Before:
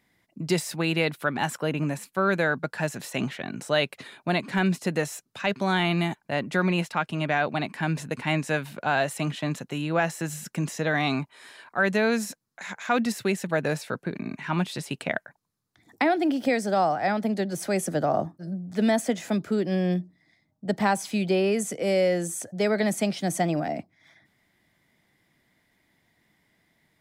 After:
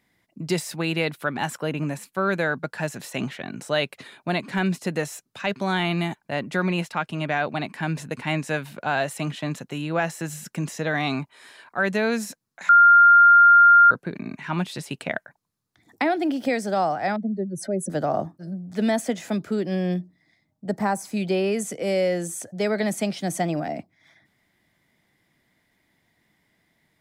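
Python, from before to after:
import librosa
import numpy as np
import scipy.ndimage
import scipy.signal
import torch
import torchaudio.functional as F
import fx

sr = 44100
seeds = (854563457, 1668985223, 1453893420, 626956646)

y = fx.spec_expand(x, sr, power=2.2, at=(17.16, 17.9))
y = fx.peak_eq(y, sr, hz=3200.0, db=-13.5, octaves=0.95, at=(20.69, 21.17))
y = fx.edit(y, sr, fx.bleep(start_s=12.69, length_s=1.22, hz=1400.0, db=-9.0), tone=tone)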